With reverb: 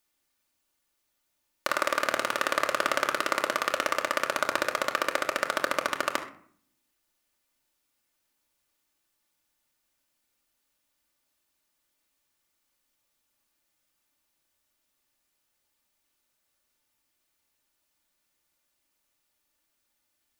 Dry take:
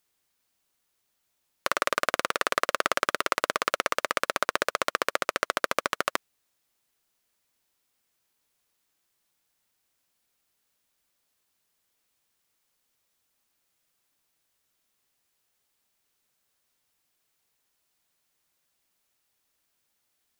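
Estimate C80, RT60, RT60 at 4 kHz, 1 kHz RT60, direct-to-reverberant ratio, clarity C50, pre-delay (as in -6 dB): 14.0 dB, 0.55 s, 0.35 s, 0.55 s, 2.0 dB, 10.0 dB, 3 ms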